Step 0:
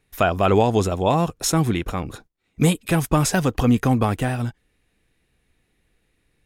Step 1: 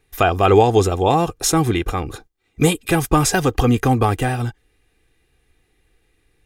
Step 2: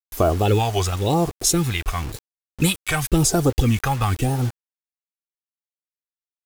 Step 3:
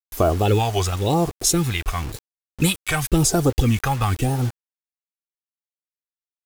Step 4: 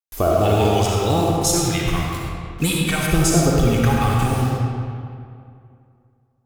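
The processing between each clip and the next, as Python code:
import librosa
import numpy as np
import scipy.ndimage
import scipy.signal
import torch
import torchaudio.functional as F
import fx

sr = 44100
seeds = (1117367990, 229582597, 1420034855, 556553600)

y1 = x + 0.5 * np.pad(x, (int(2.5 * sr / 1000.0), 0))[:len(x)]
y1 = y1 * librosa.db_to_amplitude(3.0)
y2 = fx.phaser_stages(y1, sr, stages=2, low_hz=280.0, high_hz=2400.0, hz=0.96, feedback_pct=25)
y2 = fx.quant_dither(y2, sr, seeds[0], bits=6, dither='none')
y2 = fx.wow_flutter(y2, sr, seeds[1], rate_hz=2.1, depth_cents=130.0)
y3 = y2
y4 = fx.rev_freeverb(y3, sr, rt60_s=2.4, hf_ratio=0.65, predelay_ms=20, drr_db=-3.0)
y4 = y4 * librosa.db_to_amplitude(-2.0)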